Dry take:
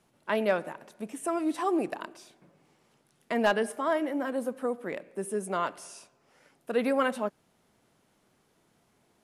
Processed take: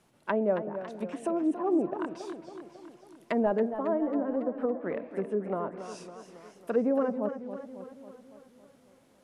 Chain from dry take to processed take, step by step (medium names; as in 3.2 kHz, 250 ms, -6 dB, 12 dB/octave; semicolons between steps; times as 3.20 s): low-pass that closes with the level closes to 610 Hz, closed at -27.5 dBFS; modulated delay 276 ms, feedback 59%, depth 108 cents, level -10.5 dB; trim +2 dB